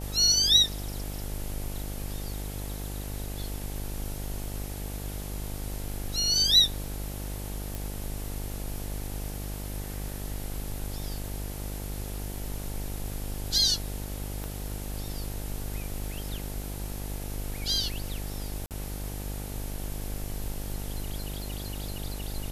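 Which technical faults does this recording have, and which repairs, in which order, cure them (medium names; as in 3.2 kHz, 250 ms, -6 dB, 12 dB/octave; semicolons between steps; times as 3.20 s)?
buzz 50 Hz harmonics 18 -36 dBFS
7.75 s: pop
14.44 s: pop -22 dBFS
18.66–18.71 s: dropout 48 ms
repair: de-click; de-hum 50 Hz, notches 18; interpolate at 18.66 s, 48 ms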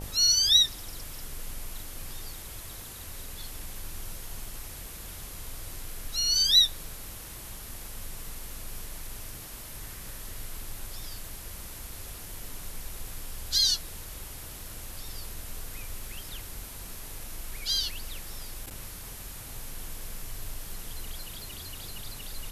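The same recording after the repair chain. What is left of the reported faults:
14.44 s: pop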